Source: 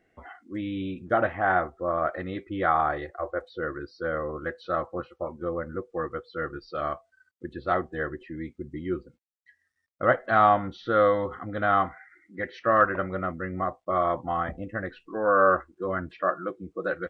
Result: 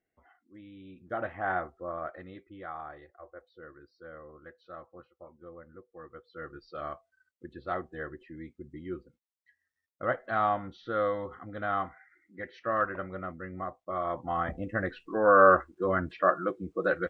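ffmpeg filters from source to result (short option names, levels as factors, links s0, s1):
-af "volume=3.98,afade=t=in:st=0.83:d=0.65:silence=0.281838,afade=t=out:st=1.48:d=1.16:silence=0.298538,afade=t=in:st=5.99:d=0.68:silence=0.334965,afade=t=in:st=14.03:d=0.79:silence=0.334965"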